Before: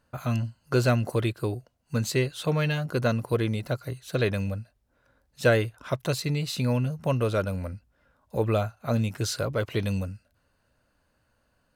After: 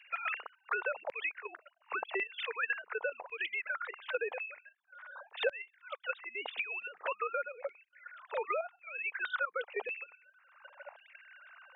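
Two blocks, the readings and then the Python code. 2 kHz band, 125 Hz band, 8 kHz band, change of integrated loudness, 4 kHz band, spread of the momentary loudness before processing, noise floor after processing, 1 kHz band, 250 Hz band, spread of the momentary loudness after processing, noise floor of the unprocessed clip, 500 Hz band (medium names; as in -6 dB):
-0.5 dB, under -40 dB, under -40 dB, -9.5 dB, -9.5 dB, 9 LU, -73 dBFS, -3.5 dB, under -25 dB, 17 LU, -71 dBFS, -11.5 dB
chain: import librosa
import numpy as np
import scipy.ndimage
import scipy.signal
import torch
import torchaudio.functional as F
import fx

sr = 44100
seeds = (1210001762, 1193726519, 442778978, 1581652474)

y = fx.sine_speech(x, sr)
y = fx.high_shelf(y, sr, hz=2400.0, db=11.0)
y = fx.level_steps(y, sr, step_db=12)
y = fx.ladder_highpass(y, sr, hz=400.0, resonance_pct=60)
y = fx.filter_lfo_highpass(y, sr, shape='saw_down', hz=0.91, low_hz=710.0, high_hz=2500.0, q=3.2)
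y = fx.band_squash(y, sr, depth_pct=100)
y = y * librosa.db_to_amplitude(2.0)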